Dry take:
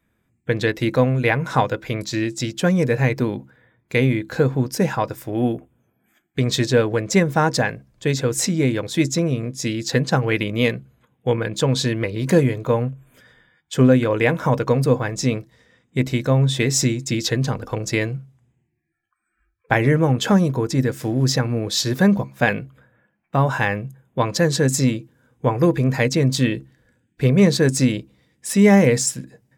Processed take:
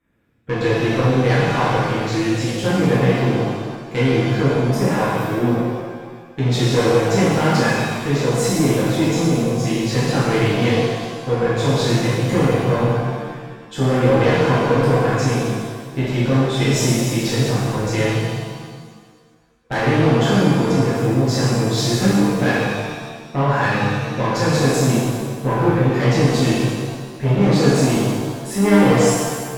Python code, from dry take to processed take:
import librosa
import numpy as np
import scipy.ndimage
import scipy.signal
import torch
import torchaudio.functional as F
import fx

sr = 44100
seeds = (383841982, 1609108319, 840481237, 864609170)

y = fx.high_shelf(x, sr, hz=4000.0, db=-9.0)
y = fx.tube_stage(y, sr, drive_db=16.0, bias=0.35)
y = fx.rev_shimmer(y, sr, seeds[0], rt60_s=1.6, semitones=7, shimmer_db=-8, drr_db=-9.5)
y = y * 10.0 ** (-3.5 / 20.0)